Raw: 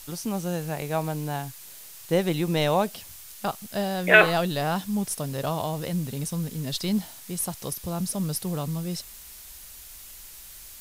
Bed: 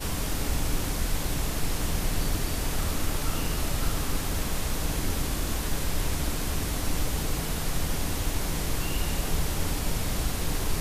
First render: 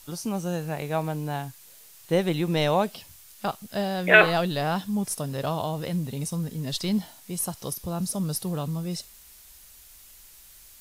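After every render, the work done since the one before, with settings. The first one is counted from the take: noise print and reduce 6 dB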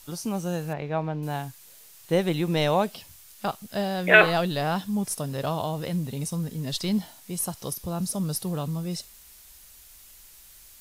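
0.73–1.23 air absorption 230 m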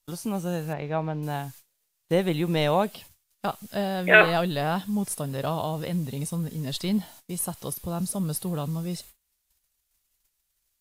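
dynamic EQ 5600 Hz, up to -7 dB, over -52 dBFS, Q 2.4; gate -46 dBFS, range -26 dB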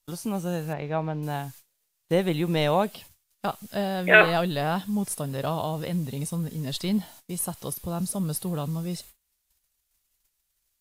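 nothing audible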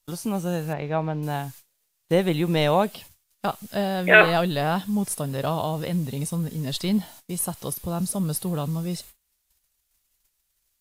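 gain +2.5 dB; limiter -3 dBFS, peak gain reduction 1.5 dB

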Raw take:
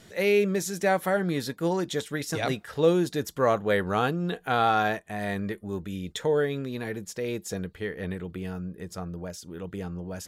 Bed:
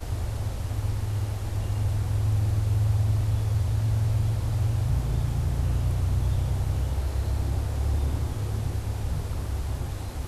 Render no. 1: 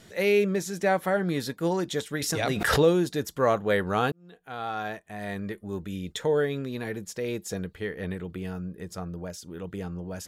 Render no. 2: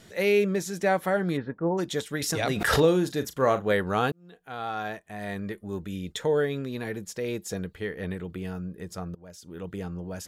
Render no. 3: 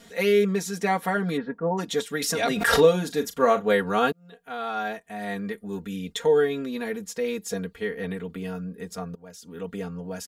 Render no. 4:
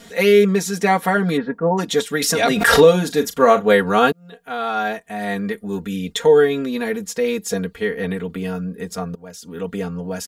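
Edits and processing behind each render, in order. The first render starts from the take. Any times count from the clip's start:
0.45–1.27 high shelf 4900 Hz -5.5 dB; 2.22–3.02 backwards sustainer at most 41 dB/s; 4.12–5.91 fade in
1.36–1.77 LPF 2300 Hz -> 1000 Hz 24 dB/oct; 2.63–3.72 doubler 38 ms -12 dB; 9.15–9.62 fade in, from -22.5 dB
low shelf 120 Hz -7 dB; comb 4.3 ms, depth 96%
gain +7.5 dB; limiter -1 dBFS, peak gain reduction 3 dB

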